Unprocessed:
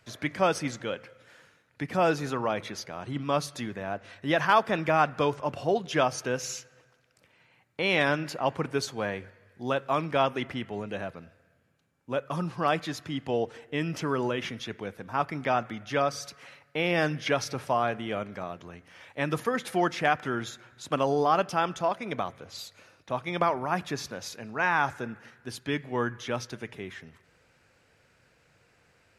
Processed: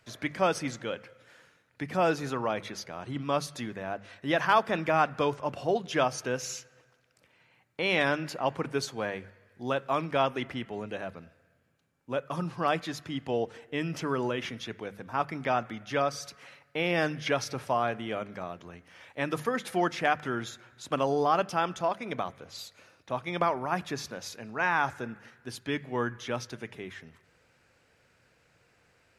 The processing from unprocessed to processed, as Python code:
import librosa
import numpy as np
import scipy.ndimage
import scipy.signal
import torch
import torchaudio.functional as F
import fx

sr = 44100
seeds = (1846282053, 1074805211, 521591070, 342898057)

y = fx.hum_notches(x, sr, base_hz=50, count=4)
y = y * 10.0 ** (-1.5 / 20.0)